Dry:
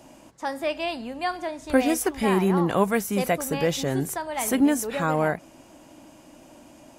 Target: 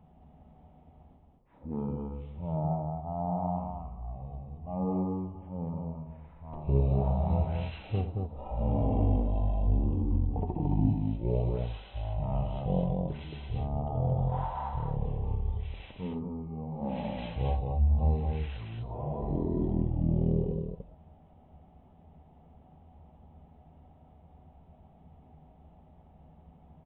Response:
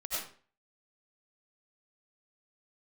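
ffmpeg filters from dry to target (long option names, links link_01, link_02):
-af "highshelf=frequency=4600:width_type=q:width=3:gain=-12,aecho=1:1:22|58:0.299|0.668,asetrate=11466,aresample=44100,volume=-8dB"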